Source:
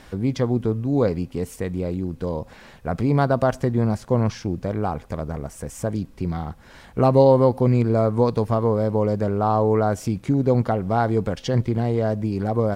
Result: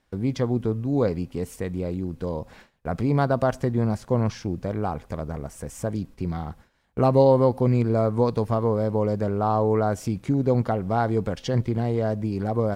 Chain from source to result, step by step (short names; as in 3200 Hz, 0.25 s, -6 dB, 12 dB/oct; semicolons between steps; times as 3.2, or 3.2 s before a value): gate with hold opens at -32 dBFS; gain -2.5 dB